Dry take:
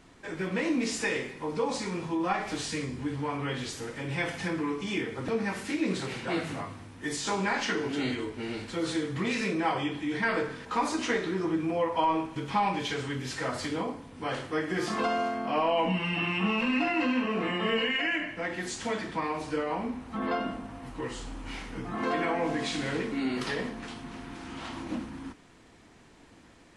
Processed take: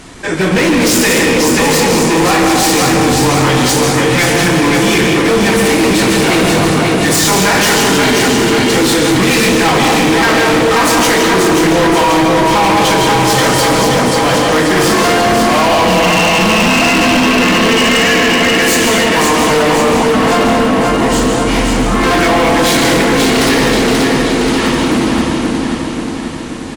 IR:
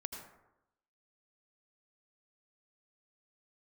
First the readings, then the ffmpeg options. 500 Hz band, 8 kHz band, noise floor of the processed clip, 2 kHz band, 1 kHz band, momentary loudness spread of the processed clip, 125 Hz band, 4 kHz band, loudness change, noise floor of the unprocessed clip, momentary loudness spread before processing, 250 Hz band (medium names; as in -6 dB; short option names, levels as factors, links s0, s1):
+21.0 dB, +27.5 dB, -17 dBFS, +20.5 dB, +20.0 dB, 3 LU, +21.0 dB, +23.5 dB, +20.5 dB, -55 dBFS, 11 LU, +20.0 dB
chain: -filter_complex "[0:a]aecho=1:1:533|1066|1599|2132|2665|3198|3731|4264:0.562|0.321|0.183|0.104|0.0594|0.0338|0.0193|0.011[s0];[1:a]atrim=start_sample=2205,asetrate=24696,aresample=44100[s1];[s0][s1]afir=irnorm=-1:irlink=0,apsyclip=17.8,highshelf=f=5300:g=8.5,aeval=exprs='0.794*(abs(mod(val(0)/0.794+3,4)-2)-1)':c=same,volume=0.631"